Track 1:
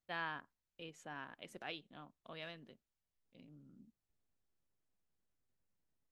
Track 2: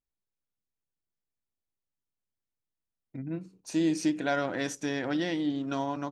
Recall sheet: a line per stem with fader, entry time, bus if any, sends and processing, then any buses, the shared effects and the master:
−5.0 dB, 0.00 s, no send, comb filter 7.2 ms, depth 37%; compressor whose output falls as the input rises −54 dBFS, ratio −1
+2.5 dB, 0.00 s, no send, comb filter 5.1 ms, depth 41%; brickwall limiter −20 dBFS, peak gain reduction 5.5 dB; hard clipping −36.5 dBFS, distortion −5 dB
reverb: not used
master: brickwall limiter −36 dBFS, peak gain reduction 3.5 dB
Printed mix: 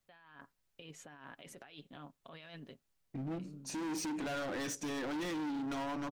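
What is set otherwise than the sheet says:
stem 1 −5.0 dB → +1.0 dB
stem 2: missing comb filter 5.1 ms, depth 41%

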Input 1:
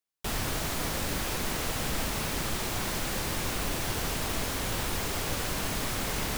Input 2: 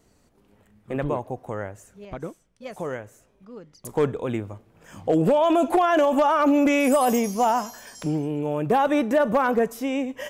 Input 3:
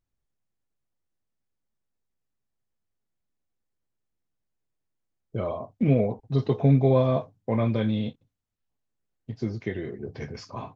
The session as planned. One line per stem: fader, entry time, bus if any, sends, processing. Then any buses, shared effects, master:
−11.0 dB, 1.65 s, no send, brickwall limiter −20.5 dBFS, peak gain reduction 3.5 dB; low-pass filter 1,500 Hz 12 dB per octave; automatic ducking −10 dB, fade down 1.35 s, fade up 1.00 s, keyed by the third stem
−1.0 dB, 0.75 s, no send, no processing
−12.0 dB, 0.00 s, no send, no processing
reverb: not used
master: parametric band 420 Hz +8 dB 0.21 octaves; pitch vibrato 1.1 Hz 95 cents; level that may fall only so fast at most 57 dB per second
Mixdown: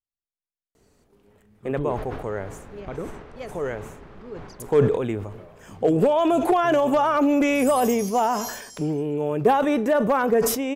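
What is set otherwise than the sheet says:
stem 3 −12.0 dB → −22.5 dB
master: missing pitch vibrato 1.1 Hz 95 cents

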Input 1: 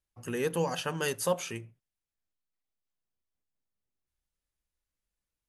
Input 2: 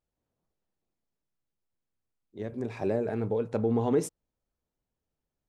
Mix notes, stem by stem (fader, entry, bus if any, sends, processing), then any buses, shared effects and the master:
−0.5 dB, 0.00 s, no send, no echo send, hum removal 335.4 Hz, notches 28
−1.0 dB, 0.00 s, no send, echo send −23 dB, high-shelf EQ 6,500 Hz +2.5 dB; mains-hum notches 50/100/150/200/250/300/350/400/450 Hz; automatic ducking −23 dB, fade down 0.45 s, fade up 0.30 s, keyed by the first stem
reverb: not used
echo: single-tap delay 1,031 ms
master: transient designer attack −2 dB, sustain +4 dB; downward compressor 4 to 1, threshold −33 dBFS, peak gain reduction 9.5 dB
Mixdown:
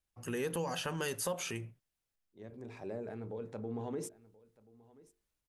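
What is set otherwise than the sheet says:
stem 1: missing hum removal 335.4 Hz, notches 28
stem 2 −1.0 dB → −12.0 dB

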